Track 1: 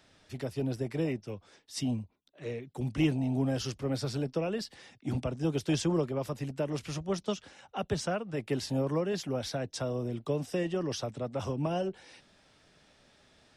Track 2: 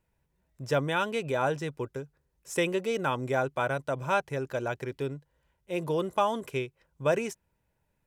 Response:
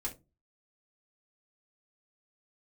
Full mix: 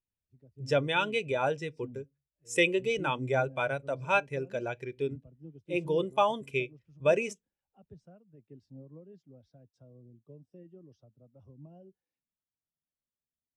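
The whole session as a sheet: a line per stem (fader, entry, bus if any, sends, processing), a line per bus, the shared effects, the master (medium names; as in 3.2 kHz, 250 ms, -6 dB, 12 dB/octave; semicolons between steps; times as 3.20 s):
-19.0 dB, 0.00 s, no send, bass shelf 420 Hz +8.5 dB
-2.0 dB, 0.00 s, send -13.5 dB, high-order bell 4.7 kHz +8.5 dB 2.7 oct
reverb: on, pre-delay 3 ms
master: spectral contrast expander 1.5:1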